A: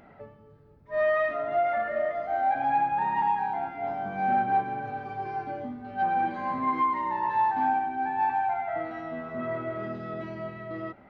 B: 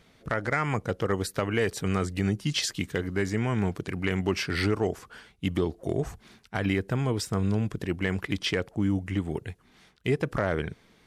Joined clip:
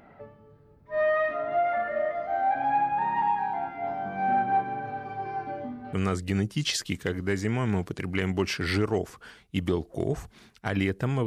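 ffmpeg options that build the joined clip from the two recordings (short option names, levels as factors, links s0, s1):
-filter_complex "[0:a]apad=whole_dur=11.26,atrim=end=11.26,atrim=end=5.932[s0];[1:a]atrim=start=1.818:end=7.15[s1];[s0][s1]acrossfade=d=0.004:c1=hsin:c2=hsin"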